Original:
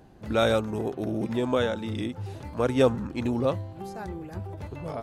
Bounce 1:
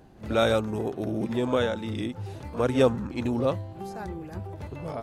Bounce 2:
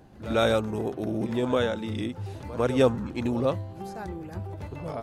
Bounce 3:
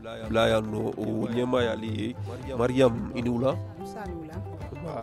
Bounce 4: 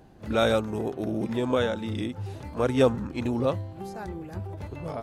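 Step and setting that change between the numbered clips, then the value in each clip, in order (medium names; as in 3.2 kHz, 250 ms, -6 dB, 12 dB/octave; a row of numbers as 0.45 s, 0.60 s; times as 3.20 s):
pre-echo, time: 56 ms, 103 ms, 305 ms, 31 ms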